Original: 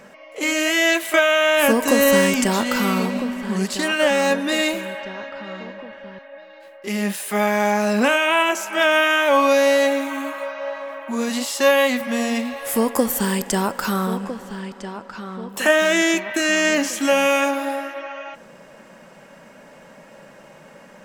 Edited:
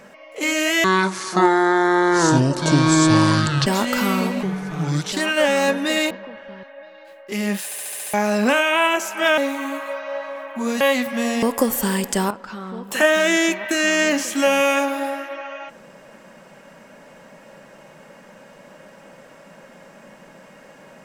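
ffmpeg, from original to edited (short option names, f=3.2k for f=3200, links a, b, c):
-filter_complex "[0:a]asplit=17[a][b][c][d][e][f][g][h][i][j][k][l][m][n][o][p][q];[a]atrim=end=0.844[r];[b]atrim=start=0.84:end=2.45,asetpts=PTS-STARTPTS,asetrate=25137,aresample=44100,atrim=end_sample=124563,asetpts=PTS-STARTPTS[s];[c]atrim=start=2.446:end=3.214[t];[d]atrim=start=3.21:end=3.75,asetpts=PTS-STARTPTS,asetrate=33957,aresample=44100,atrim=end_sample=30927,asetpts=PTS-STARTPTS[u];[e]atrim=start=3.746:end=4.732[v];[f]atrim=start=5.658:end=7.272[w];[g]atrim=start=7.198:end=7.272[x];[h]atrim=start=7.198:end=7.272[y];[i]atrim=start=7.198:end=7.272[z];[j]atrim=start=7.198:end=7.272[aa];[k]atrim=start=7.198:end=7.272[ab];[l]atrim=start=7.198:end=7.272[ac];[m]atrim=start=7.688:end=8.932[ad];[n]atrim=start=9.898:end=11.332[ae];[o]atrim=start=11.748:end=12.372[af];[p]atrim=start=12.798:end=13.682[ag];[q]atrim=start=14.958[ah];[r][s]acrossfade=d=0.004:c1=hsin:c2=hsin[ai];[ai][t]acrossfade=d=0.004:c1=hsin:c2=hsin[aj];[aj][u]acrossfade=d=0.004:c1=hsin:c2=hsin[ak];[ak][v]acrossfade=d=0.004:c1=hsin:c2=hsin[al];[al][w]acrossfade=d=0.004:c1=hsin:c2=hsin[am];[am][x]acrossfade=d=0.004:c1=hsin:c2=hsin[an];[an][y]acrossfade=d=0.004:c1=hsin:c2=hsin[ao];[ao][z]acrossfade=d=0.004:c1=hsin:c2=hsin[ap];[ap][aa]acrossfade=d=0.004:c1=hsin:c2=hsin[aq];[aq][ab]acrossfade=d=0.004:c1=hsin:c2=hsin[ar];[ar][ac]acrossfade=d=0.004:c1=hsin:c2=hsin[as];[as][ad]acrossfade=d=0.004:c1=hsin:c2=hsin[at];[at][ae]acrossfade=d=0.004:c1=hsin:c2=hsin[au];[au][af]acrossfade=d=0.004:c1=hsin:c2=hsin[av];[av][ag]acrossfade=d=0.004:c1=hsin:c2=hsin[aw];[aw][ah]acrossfade=d=0.004:c1=hsin:c2=hsin"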